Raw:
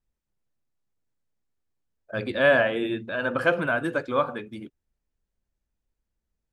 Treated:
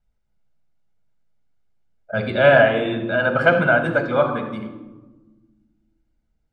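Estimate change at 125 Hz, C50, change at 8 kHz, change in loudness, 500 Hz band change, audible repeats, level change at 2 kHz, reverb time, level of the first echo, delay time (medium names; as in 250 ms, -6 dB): +10.5 dB, 8.5 dB, no reading, +6.5 dB, +7.5 dB, no echo, +6.5 dB, 1.2 s, no echo, no echo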